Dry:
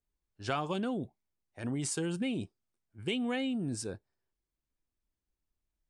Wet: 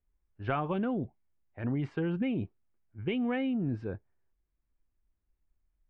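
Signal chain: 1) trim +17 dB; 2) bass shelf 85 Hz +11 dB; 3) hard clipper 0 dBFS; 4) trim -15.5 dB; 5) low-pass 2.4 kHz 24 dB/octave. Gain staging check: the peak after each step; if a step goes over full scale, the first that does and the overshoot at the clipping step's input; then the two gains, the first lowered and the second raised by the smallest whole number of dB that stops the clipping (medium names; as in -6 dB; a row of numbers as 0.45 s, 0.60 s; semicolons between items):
-1.5 dBFS, -2.5 dBFS, -2.5 dBFS, -18.0 dBFS, -19.0 dBFS; nothing clips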